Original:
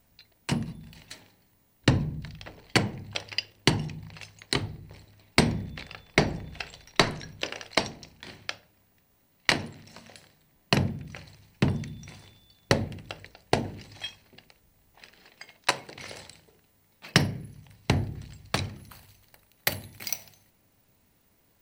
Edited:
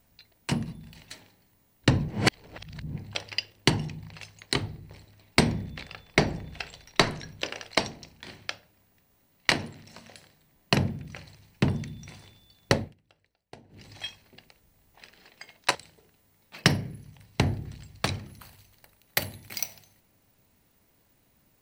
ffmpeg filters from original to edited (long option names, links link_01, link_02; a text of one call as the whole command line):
ffmpeg -i in.wav -filter_complex "[0:a]asplit=6[link_01][link_02][link_03][link_04][link_05][link_06];[link_01]atrim=end=2.082[link_07];[link_02]atrim=start=2.078:end=2.962,asetpts=PTS-STARTPTS,areverse[link_08];[link_03]atrim=start=2.958:end=12.94,asetpts=PTS-STARTPTS,afade=type=out:start_time=9.782:duration=0.2:silence=0.0668344[link_09];[link_04]atrim=start=12.94:end=13.69,asetpts=PTS-STARTPTS,volume=-23.5dB[link_10];[link_05]atrim=start=13.69:end=15.752,asetpts=PTS-STARTPTS,afade=type=in:duration=0.2:silence=0.0668344[link_11];[link_06]atrim=start=16.248[link_12];[link_07][link_08]acrossfade=duration=0.004:curve1=hsin:curve2=hsin[link_13];[link_09][link_10][link_11]concat=n=3:v=0:a=1[link_14];[link_13][link_14]acrossfade=duration=0.004:curve1=hsin:curve2=hsin[link_15];[link_15][link_12]acrossfade=duration=0.004:curve1=hsin:curve2=hsin" out.wav